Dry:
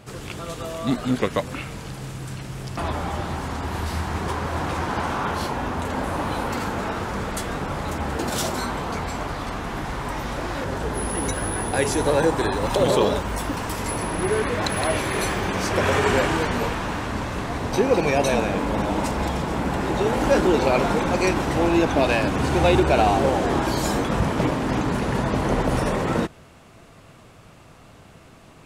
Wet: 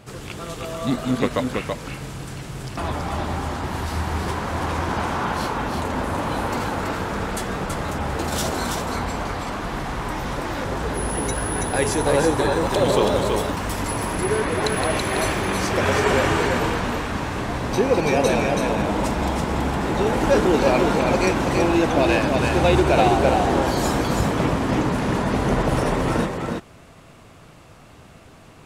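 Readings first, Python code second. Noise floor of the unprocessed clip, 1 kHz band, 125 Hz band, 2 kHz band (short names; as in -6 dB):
-48 dBFS, +1.5 dB, +1.5 dB, +1.5 dB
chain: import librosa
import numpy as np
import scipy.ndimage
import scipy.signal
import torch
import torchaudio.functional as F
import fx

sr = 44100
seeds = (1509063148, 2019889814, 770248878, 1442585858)

y = x + 10.0 ** (-4.0 / 20.0) * np.pad(x, (int(329 * sr / 1000.0), 0))[:len(x)]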